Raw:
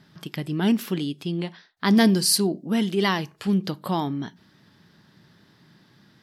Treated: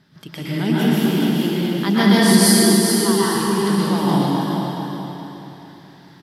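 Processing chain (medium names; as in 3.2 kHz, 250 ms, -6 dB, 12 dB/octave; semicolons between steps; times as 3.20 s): 2.19–3.23 s: static phaser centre 630 Hz, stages 6; feedback delay 424 ms, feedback 37%, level -6 dB; reverberation RT60 2.6 s, pre-delay 107 ms, DRR -9 dB; trim -2 dB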